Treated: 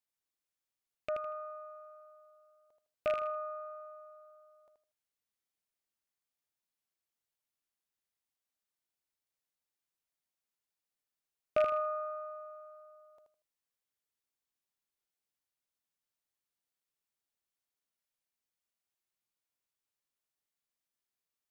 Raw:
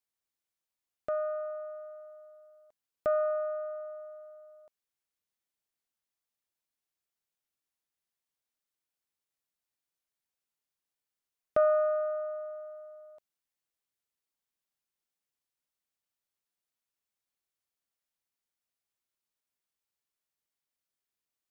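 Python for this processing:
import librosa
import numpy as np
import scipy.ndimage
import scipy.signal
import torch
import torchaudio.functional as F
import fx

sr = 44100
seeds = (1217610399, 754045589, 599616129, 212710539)

y = fx.rattle_buzz(x, sr, strikes_db=-47.0, level_db=-24.0)
y = fx.echo_feedback(y, sr, ms=79, feedback_pct=26, wet_db=-5.5)
y = y * librosa.db_to_amplitude(-3.5)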